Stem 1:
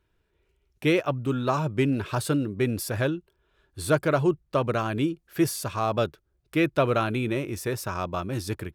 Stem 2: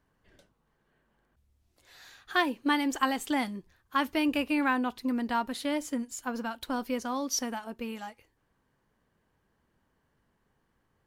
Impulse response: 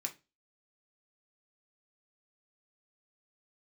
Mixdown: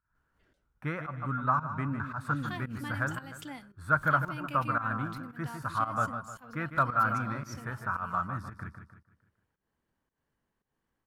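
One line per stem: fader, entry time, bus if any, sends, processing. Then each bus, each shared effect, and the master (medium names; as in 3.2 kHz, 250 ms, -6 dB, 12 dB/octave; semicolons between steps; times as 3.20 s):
-6.0 dB, 0.00 s, send -16.5 dB, echo send -8.5 dB, FFT filter 220 Hz 0 dB, 380 Hz -17 dB, 1.4 kHz +12 dB, 2.8 kHz -18 dB
-9.0 dB, 0.15 s, send -16 dB, no echo send, swell ahead of each attack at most 120 dB/s; auto duck -8 dB, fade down 0.25 s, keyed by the first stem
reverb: on, RT60 0.25 s, pre-delay 3 ms
echo: feedback delay 152 ms, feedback 43%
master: volume shaper 113 bpm, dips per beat 1, -15 dB, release 186 ms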